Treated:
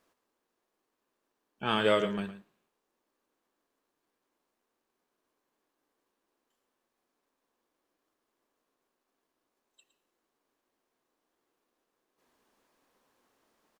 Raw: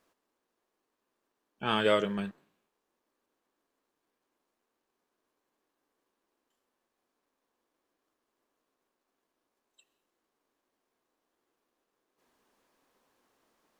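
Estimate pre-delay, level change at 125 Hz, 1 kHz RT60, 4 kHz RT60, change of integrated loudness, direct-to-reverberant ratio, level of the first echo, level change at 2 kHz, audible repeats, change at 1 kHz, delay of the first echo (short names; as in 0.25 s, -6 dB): none, 0.0 dB, none, none, +0.5 dB, none, -13.0 dB, 0.0 dB, 1, 0.0 dB, 0.112 s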